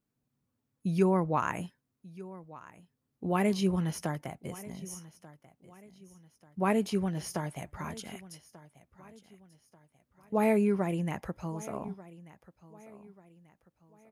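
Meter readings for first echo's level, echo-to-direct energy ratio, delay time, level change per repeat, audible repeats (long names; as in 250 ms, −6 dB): −19.0 dB, −18.5 dB, 1,188 ms, −8.0 dB, 2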